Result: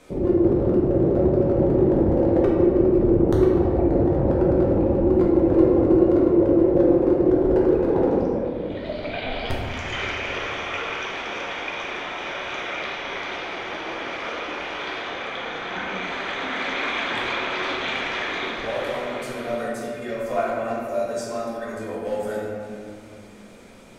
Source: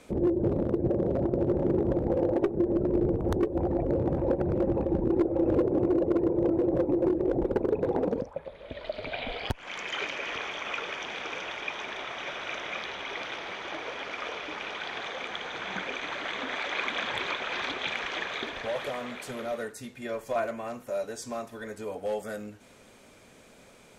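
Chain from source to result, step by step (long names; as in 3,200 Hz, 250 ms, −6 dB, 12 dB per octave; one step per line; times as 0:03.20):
0:15.02–0:16.04: high-shelf EQ 6,500 Hz −7 dB
convolution reverb RT60 2.4 s, pre-delay 6 ms, DRR −5 dB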